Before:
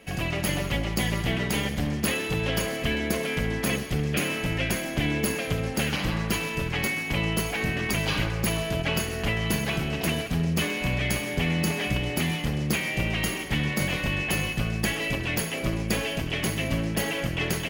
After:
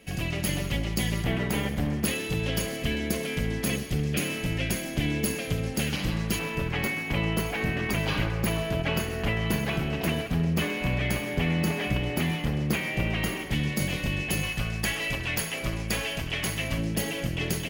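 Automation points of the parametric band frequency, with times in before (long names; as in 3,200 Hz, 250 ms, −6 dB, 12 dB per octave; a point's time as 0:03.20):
parametric band −6.5 dB 2.3 octaves
990 Hz
from 0:01.24 5,200 Hz
from 0:02.05 1,100 Hz
from 0:06.39 7,500 Hz
from 0:13.51 1,200 Hz
from 0:14.43 290 Hz
from 0:16.78 1,200 Hz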